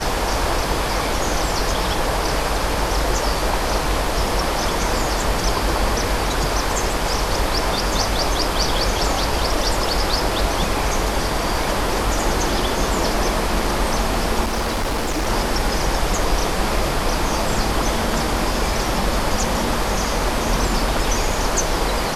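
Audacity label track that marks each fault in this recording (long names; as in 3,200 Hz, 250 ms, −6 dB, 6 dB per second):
14.440000	15.280000	clipping −18 dBFS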